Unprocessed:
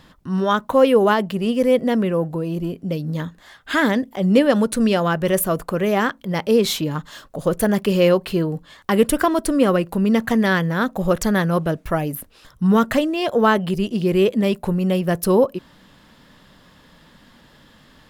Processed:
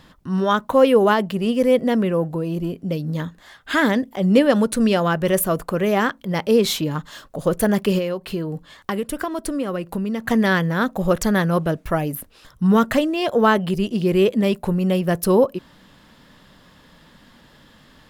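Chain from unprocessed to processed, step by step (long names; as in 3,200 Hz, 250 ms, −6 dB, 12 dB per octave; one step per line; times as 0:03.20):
0:07.98–0:10.26: downward compressor 6 to 1, threshold −22 dBFS, peak gain reduction 12 dB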